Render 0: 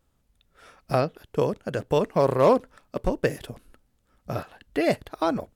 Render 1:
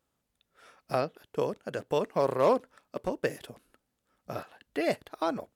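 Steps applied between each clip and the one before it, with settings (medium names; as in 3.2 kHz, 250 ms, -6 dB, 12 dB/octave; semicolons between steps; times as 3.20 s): high-pass 260 Hz 6 dB/octave; trim -4.5 dB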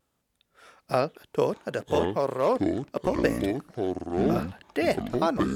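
gain riding within 4 dB 0.5 s; vibrato 0.65 Hz 12 cents; ever faster or slower copies 538 ms, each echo -7 st, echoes 2; trim +3 dB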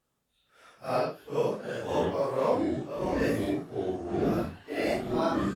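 phase randomisation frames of 200 ms; delay 978 ms -23 dB; trim -2.5 dB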